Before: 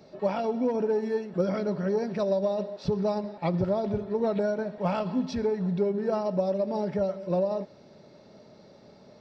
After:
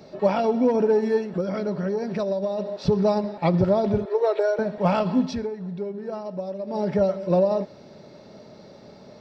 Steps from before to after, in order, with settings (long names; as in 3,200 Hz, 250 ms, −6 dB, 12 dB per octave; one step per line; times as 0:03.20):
0:01.30–0:02.66: downward compressor 3 to 1, threshold −31 dBFS, peak gain reduction 8.5 dB
0:04.05–0:04.59: Chebyshev high-pass filter 340 Hz, order 6
0:05.20–0:06.92: duck −11 dB, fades 0.29 s
level +6.5 dB